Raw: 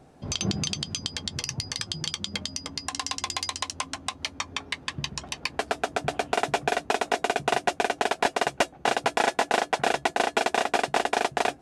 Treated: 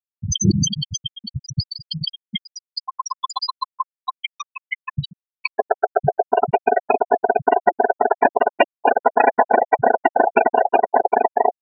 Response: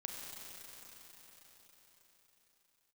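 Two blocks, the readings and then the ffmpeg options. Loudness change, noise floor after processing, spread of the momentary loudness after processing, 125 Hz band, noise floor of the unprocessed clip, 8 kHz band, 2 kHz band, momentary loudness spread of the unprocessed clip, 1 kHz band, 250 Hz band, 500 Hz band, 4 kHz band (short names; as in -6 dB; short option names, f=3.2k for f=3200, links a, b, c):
+7.5 dB, under -85 dBFS, 13 LU, +10.5 dB, -52 dBFS, n/a, +3.0 dB, 7 LU, +9.5 dB, +8.0 dB, +10.0 dB, +1.0 dB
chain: -af "apsyclip=16.5dB,afftfilt=real='re*gte(hypot(re,im),1)':imag='im*gte(hypot(re,im),1)':win_size=1024:overlap=0.75,volume=-3.5dB"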